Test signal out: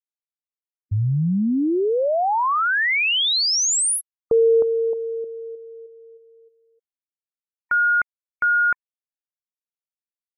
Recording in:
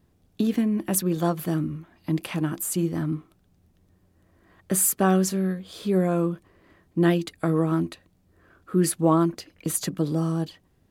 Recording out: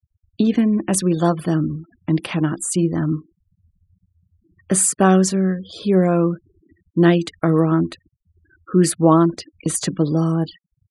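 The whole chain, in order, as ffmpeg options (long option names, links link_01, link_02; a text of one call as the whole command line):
ffmpeg -i in.wav -af "afftfilt=real='re*gte(hypot(re,im),0.00708)':imag='im*gte(hypot(re,im),0.00708)':win_size=1024:overlap=0.75,aresample=22050,aresample=44100,volume=6.5dB" out.wav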